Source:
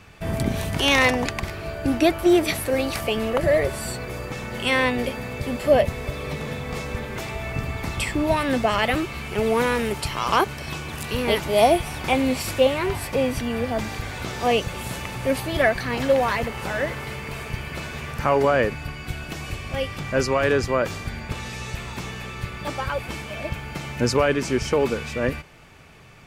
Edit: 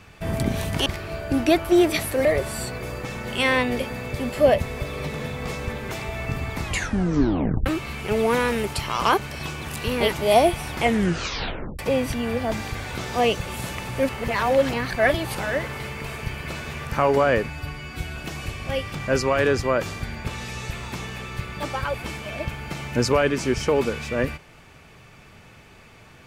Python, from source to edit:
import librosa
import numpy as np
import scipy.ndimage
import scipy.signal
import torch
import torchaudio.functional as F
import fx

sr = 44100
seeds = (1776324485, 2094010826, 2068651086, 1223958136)

y = fx.edit(x, sr, fx.cut(start_s=0.86, length_s=0.54),
    fx.cut(start_s=2.79, length_s=0.73),
    fx.tape_stop(start_s=7.89, length_s=1.04),
    fx.tape_stop(start_s=12.04, length_s=1.02),
    fx.reverse_span(start_s=15.36, length_s=1.26),
    fx.stretch_span(start_s=18.76, length_s=0.45, factor=1.5), tone=tone)